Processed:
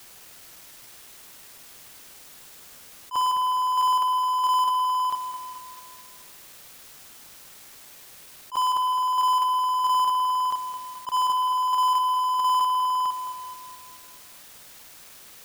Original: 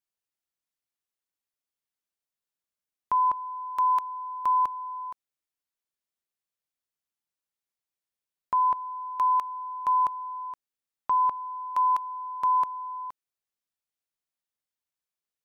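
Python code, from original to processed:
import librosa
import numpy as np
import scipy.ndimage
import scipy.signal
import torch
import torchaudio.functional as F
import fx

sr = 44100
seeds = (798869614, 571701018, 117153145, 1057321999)

p1 = fx.local_reverse(x, sr, ms=51.0)
p2 = fx.power_curve(p1, sr, exponent=0.35)
p3 = p2 + fx.echo_feedback(p2, sr, ms=215, feedback_pct=53, wet_db=-10, dry=0)
p4 = fx.attack_slew(p3, sr, db_per_s=380.0)
y = p4 * 10.0 ** (-1.5 / 20.0)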